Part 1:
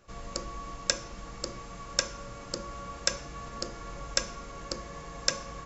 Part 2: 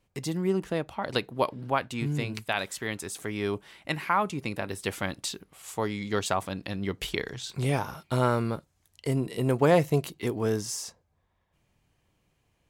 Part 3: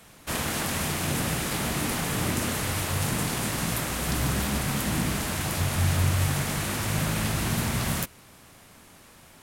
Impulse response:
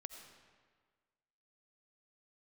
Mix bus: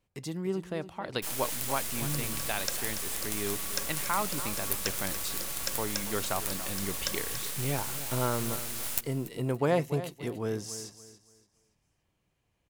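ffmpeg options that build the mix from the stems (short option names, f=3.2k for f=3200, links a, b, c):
-filter_complex "[0:a]adelay=1500,volume=-1.5dB,asplit=2[a][b];[b]volume=-6dB[c];[1:a]volume=-5.5dB,asplit=3[d][e][f];[e]volume=-13.5dB[g];[2:a]aderivative,acrusher=bits=4:dc=4:mix=0:aa=0.000001,adelay=950,volume=1dB,asplit=2[h][i];[i]volume=-18dB[j];[f]apad=whole_len=315558[k];[a][k]sidechaincompress=threshold=-51dB:ratio=8:attack=6.8:release=390[l];[c][g][j]amix=inputs=3:normalize=0,aecho=0:1:285|570|855|1140:1|0.31|0.0961|0.0298[m];[l][d][h][m]amix=inputs=4:normalize=0"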